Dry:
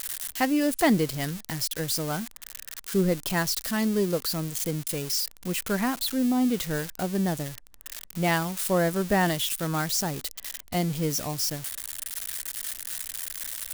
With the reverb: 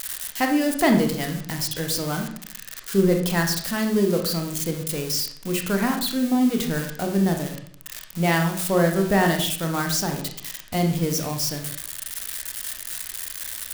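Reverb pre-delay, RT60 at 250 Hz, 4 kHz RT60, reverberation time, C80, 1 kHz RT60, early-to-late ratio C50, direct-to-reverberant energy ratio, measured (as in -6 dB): 24 ms, 0.75 s, 0.45 s, 0.60 s, 11.0 dB, 0.55 s, 7.0 dB, 3.0 dB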